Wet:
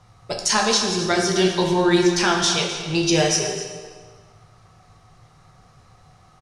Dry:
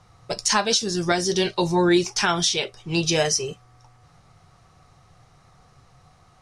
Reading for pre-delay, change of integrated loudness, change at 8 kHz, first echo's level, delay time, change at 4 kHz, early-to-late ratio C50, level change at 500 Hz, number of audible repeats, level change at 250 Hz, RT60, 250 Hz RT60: 8 ms, +2.5 dB, +2.0 dB, −13.0 dB, 257 ms, +2.0 dB, 3.5 dB, +3.0 dB, 1, +3.0 dB, 1.6 s, 1.6 s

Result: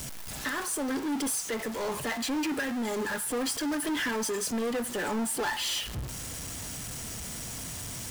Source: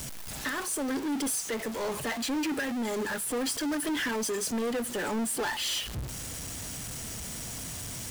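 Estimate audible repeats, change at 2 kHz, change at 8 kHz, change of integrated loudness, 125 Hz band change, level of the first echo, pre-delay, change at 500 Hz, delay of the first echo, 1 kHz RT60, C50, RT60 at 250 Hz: no echo audible, +0.5 dB, 0.0 dB, 0.0 dB, 0.0 dB, no echo audible, 3 ms, 0.0 dB, no echo audible, 0.65 s, 15.5 dB, 0.65 s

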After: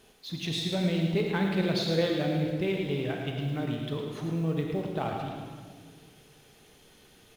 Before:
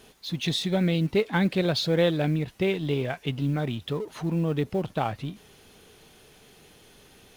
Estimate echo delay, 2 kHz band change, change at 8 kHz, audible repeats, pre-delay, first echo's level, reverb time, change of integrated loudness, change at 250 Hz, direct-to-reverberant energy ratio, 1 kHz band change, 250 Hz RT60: 109 ms, −3.5 dB, −3.5 dB, 1, 33 ms, −7.5 dB, 1.7 s, −3.0 dB, −2.5 dB, 0.5 dB, −3.5 dB, 2.0 s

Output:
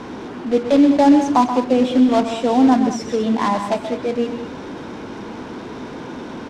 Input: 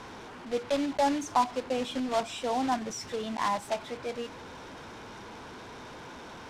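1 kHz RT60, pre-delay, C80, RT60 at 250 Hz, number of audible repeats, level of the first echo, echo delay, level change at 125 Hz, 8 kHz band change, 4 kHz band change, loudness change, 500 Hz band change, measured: no reverb audible, no reverb audible, no reverb audible, no reverb audible, 2, −10.0 dB, 129 ms, +14.0 dB, +5.0 dB, +6.5 dB, +14.0 dB, +12.5 dB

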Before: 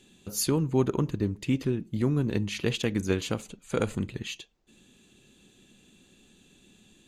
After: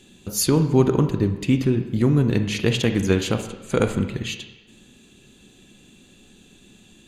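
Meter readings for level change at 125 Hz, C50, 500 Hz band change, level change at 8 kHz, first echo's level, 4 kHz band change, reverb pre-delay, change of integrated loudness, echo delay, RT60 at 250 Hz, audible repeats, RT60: +8.5 dB, 9.5 dB, +7.5 dB, +6.5 dB, no echo audible, +7.0 dB, 24 ms, +7.5 dB, no echo audible, 1.0 s, no echo audible, 1.1 s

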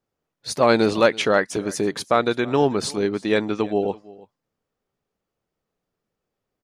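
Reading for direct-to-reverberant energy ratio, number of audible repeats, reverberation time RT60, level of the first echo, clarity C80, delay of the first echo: no reverb audible, 1, no reverb audible, −21.5 dB, no reverb audible, 330 ms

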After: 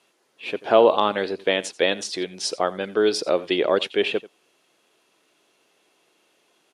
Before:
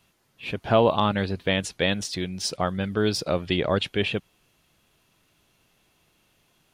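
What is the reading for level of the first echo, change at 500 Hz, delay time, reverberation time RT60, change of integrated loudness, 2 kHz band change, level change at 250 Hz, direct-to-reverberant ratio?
−19.0 dB, +5.0 dB, 87 ms, no reverb audible, +3.0 dB, +2.0 dB, −1.5 dB, no reverb audible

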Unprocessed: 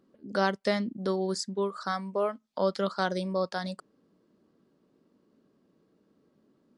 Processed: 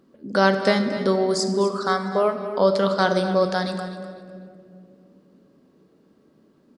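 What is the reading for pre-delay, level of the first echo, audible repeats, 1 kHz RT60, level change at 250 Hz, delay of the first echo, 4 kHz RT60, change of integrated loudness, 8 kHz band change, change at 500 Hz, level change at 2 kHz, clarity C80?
12 ms, −13.0 dB, 3, 1.9 s, +9.0 dB, 251 ms, 1.4 s, +9.0 dB, +8.5 dB, +9.5 dB, +9.5 dB, 7.5 dB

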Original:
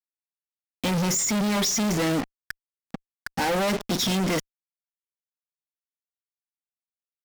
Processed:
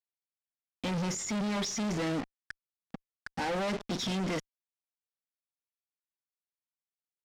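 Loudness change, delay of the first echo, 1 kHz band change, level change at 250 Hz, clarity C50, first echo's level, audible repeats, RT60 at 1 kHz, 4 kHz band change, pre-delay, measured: −9.0 dB, no echo audible, −8.0 dB, −7.5 dB, no reverb audible, no echo audible, no echo audible, no reverb audible, −9.5 dB, no reverb audible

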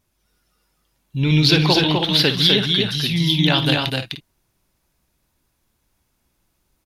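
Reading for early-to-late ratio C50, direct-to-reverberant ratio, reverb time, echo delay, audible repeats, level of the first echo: no reverb audible, no reverb audible, no reverb audible, 59 ms, 4, −12.0 dB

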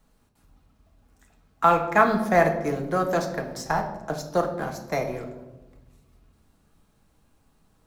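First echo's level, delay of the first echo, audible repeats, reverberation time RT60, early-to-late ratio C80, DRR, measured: no echo audible, no echo audible, no echo audible, 1.1 s, 11.5 dB, 2.5 dB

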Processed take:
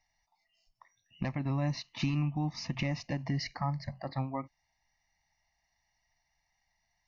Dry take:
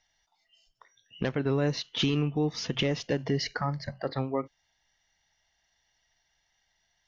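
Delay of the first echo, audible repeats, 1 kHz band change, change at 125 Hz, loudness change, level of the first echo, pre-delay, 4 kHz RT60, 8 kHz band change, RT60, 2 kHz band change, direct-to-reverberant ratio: no echo audible, no echo audible, −2.5 dB, −1.0 dB, −5.0 dB, no echo audible, no reverb audible, no reverb audible, can't be measured, no reverb audible, −5.5 dB, no reverb audible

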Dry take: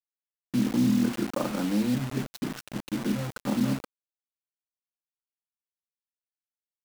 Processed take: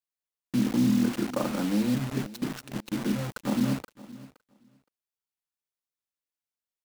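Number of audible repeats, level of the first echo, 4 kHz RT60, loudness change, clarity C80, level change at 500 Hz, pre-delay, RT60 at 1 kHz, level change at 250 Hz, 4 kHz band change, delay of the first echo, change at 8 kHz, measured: 1, −19.0 dB, no reverb audible, 0.0 dB, no reverb audible, 0.0 dB, no reverb audible, no reverb audible, 0.0 dB, 0.0 dB, 518 ms, 0.0 dB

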